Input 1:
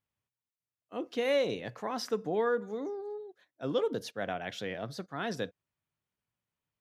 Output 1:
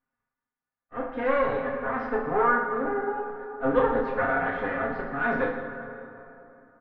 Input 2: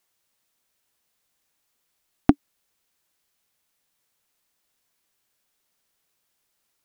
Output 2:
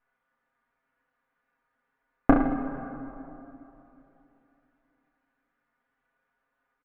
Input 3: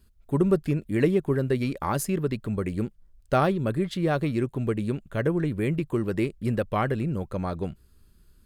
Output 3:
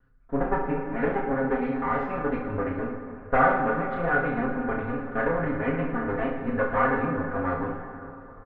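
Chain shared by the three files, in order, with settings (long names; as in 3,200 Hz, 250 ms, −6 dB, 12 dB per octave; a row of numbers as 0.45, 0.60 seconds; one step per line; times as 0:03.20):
lower of the sound and its delayed copy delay 4.1 ms
comb filter 7.5 ms, depth 75%
dynamic equaliser 210 Hz, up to −7 dB, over −38 dBFS, Q 1.8
speech leveller 2 s
transistor ladder low-pass 1,800 Hz, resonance 50%
reverse bouncing-ball delay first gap 30 ms, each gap 1.2×, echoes 5
dense smooth reverb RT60 3.1 s, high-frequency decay 0.55×, DRR 5.5 dB
loudness normalisation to −27 LKFS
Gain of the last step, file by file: +12.0, +8.0, +5.0 decibels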